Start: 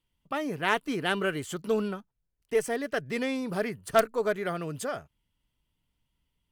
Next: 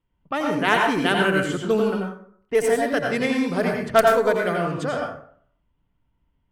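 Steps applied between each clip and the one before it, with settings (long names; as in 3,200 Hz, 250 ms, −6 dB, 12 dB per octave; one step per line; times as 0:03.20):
low-pass that shuts in the quiet parts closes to 1,600 Hz, open at −26 dBFS
dense smooth reverb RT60 0.57 s, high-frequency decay 0.55×, pre-delay 75 ms, DRR 0.5 dB
level +5.5 dB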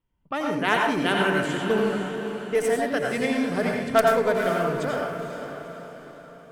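feedback delay with all-pass diffusion 488 ms, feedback 48%, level −8 dB
level −3 dB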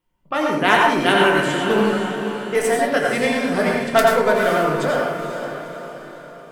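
low-shelf EQ 180 Hz −9.5 dB
rectangular room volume 130 cubic metres, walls furnished, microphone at 0.96 metres
level +6 dB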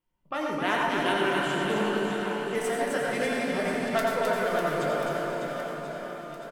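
downward compressor 1.5 to 1, threshold −22 dBFS, peak gain reduction 5 dB
on a send: reverse bouncing-ball delay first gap 260 ms, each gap 1.3×, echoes 5
on the sum: level −8 dB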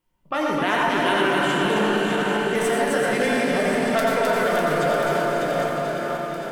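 feedback delay that plays each chunk backwards 475 ms, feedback 57%, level −8.5 dB
in parallel at +2.5 dB: brickwall limiter −21 dBFS, peak gain reduction 8 dB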